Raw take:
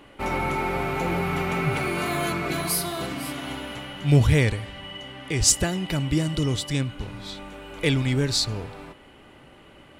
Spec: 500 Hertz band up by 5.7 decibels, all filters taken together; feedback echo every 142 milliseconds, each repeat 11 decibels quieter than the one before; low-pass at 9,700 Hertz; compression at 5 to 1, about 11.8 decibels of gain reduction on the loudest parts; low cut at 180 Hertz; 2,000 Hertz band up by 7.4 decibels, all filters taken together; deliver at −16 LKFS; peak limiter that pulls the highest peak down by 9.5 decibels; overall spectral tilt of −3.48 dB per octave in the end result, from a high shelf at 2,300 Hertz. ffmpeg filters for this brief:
ffmpeg -i in.wav -af "highpass=180,lowpass=9700,equalizer=frequency=500:width_type=o:gain=7,equalizer=frequency=2000:width_type=o:gain=6.5,highshelf=frequency=2300:gain=3.5,acompressor=threshold=-25dB:ratio=5,alimiter=limit=-21.5dB:level=0:latency=1,aecho=1:1:142|284|426:0.282|0.0789|0.0221,volume=15dB" out.wav

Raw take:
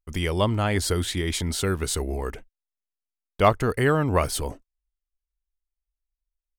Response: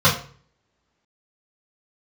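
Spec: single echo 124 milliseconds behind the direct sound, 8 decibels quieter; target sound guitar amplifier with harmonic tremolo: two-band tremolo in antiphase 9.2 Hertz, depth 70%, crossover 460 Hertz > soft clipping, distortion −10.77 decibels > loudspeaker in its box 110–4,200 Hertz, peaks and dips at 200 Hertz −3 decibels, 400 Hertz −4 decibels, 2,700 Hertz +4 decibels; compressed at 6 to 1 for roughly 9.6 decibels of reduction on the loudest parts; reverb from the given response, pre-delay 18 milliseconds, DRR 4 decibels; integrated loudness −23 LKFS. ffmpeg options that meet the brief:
-filter_complex "[0:a]acompressor=threshold=-22dB:ratio=6,aecho=1:1:124:0.398,asplit=2[link_01][link_02];[1:a]atrim=start_sample=2205,adelay=18[link_03];[link_02][link_03]afir=irnorm=-1:irlink=0,volume=-25.5dB[link_04];[link_01][link_04]amix=inputs=2:normalize=0,acrossover=split=460[link_05][link_06];[link_05]aeval=exprs='val(0)*(1-0.7/2+0.7/2*cos(2*PI*9.2*n/s))':channel_layout=same[link_07];[link_06]aeval=exprs='val(0)*(1-0.7/2-0.7/2*cos(2*PI*9.2*n/s))':channel_layout=same[link_08];[link_07][link_08]amix=inputs=2:normalize=0,asoftclip=threshold=-24dB,highpass=110,equalizer=frequency=200:width_type=q:width=4:gain=-3,equalizer=frequency=400:width_type=q:width=4:gain=-4,equalizer=frequency=2700:width_type=q:width=4:gain=4,lowpass=frequency=4200:width=0.5412,lowpass=frequency=4200:width=1.3066,volume=10dB"

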